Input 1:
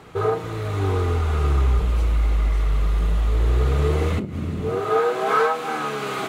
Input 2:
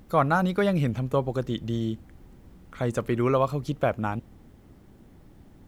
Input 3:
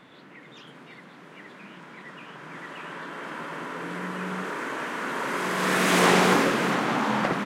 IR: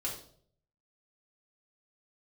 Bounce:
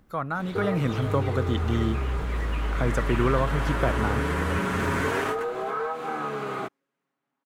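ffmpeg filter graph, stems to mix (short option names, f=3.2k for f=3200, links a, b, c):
-filter_complex "[0:a]acrossover=split=100|1900[a][b][c];[a]acompressor=threshold=-25dB:ratio=4[d];[b]acompressor=threshold=-23dB:ratio=4[e];[c]acompressor=threshold=-48dB:ratio=4[f];[d][e][f]amix=inputs=3:normalize=0,alimiter=limit=-18dB:level=0:latency=1:release=111,adelay=400,volume=-2.5dB[g];[1:a]dynaudnorm=f=110:g=11:m=11dB,equalizer=f=1.4k:w=1.5:g=7.5,acrossover=split=410[h][i];[i]acompressor=threshold=-20dB:ratio=2.5[j];[h][j]amix=inputs=2:normalize=0,volume=-8.5dB,asplit=2[k][l];[2:a]highshelf=f=12k:g=10.5,aecho=1:1:7.3:0.74,acompressor=threshold=-25dB:ratio=1.5,adelay=350,volume=2.5dB[m];[l]apad=whole_len=344328[n];[m][n]sidechaingate=range=-60dB:threshold=-52dB:ratio=16:detection=peak[o];[g][k][o]amix=inputs=3:normalize=0"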